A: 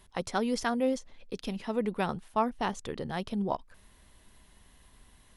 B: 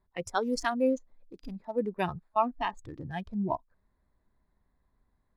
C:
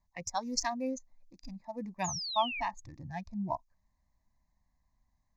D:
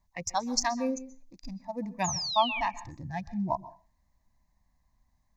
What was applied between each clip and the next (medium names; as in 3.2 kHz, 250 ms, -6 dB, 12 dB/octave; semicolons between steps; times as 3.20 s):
local Wiener filter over 15 samples; spectral noise reduction 16 dB; trim +2.5 dB
peaking EQ 6.5 kHz +14 dB 0.72 oct; static phaser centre 2.1 kHz, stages 8; painted sound fall, 2.04–2.61 s, 2.2–7.1 kHz -36 dBFS; trim -2 dB
reverberation RT60 0.35 s, pre-delay 117 ms, DRR 17 dB; trim +4.5 dB